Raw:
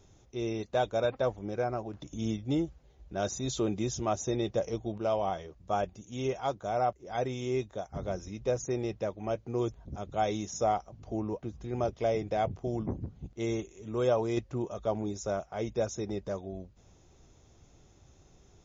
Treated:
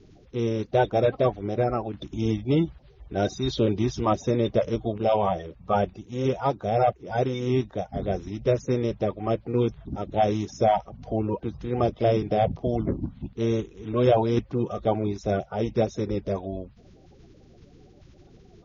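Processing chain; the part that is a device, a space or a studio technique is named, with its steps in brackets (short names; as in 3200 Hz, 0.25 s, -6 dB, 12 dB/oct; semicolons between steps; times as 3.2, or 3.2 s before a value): clip after many re-uploads (LPF 4800 Hz 24 dB/oct; bin magnitudes rounded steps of 30 dB); LPF 6300 Hz 24 dB/oct; gain +8 dB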